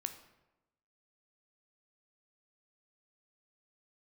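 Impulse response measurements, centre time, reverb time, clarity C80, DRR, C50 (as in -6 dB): 12 ms, 1.0 s, 13.0 dB, 7.5 dB, 11.0 dB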